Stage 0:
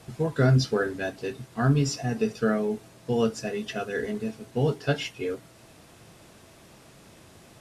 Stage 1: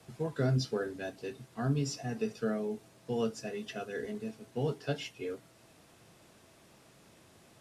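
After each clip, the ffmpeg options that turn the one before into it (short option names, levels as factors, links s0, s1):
-filter_complex "[0:a]lowshelf=f=76:g=-7,acrossover=split=170|1000|2200[s0][s1][s2][s3];[s2]alimiter=level_in=2.99:limit=0.0631:level=0:latency=1:release=494,volume=0.335[s4];[s0][s1][s4][s3]amix=inputs=4:normalize=0,volume=0.422"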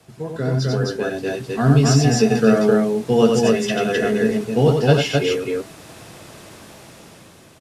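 -filter_complex "[0:a]asplit=2[s0][s1];[s1]aecho=0:1:90.38|259.5:0.631|0.794[s2];[s0][s2]amix=inputs=2:normalize=0,dynaudnorm=f=280:g=9:m=3.55,volume=1.88"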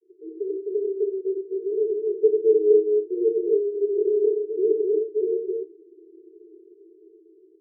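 -af "asuperpass=centerf=380:order=20:qfactor=3,volume=1.26"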